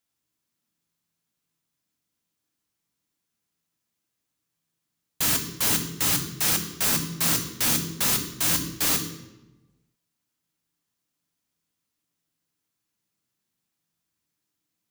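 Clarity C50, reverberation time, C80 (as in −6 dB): 9.0 dB, 1.1 s, 11.0 dB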